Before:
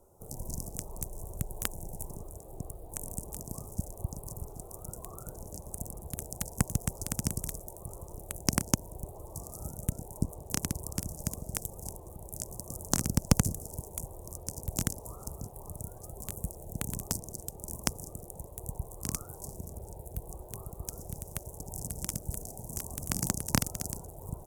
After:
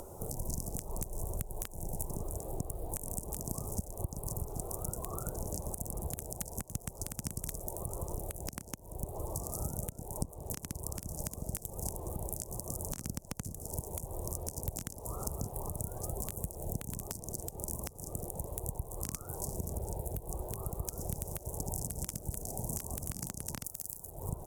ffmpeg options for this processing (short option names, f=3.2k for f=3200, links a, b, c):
-filter_complex "[0:a]asplit=3[a][b][c];[a]afade=t=out:st=23.64:d=0.02[d];[b]aemphasis=mode=production:type=75kf,afade=t=in:st=23.64:d=0.02,afade=t=out:st=24.08:d=0.02[e];[c]afade=t=in:st=24.08:d=0.02[f];[d][e][f]amix=inputs=3:normalize=0,acompressor=threshold=-40dB:ratio=12,alimiter=level_in=1dB:limit=-24dB:level=0:latency=1:release=113,volume=-1dB,acompressor=mode=upward:threshold=-48dB:ratio=2.5,volume=8dB"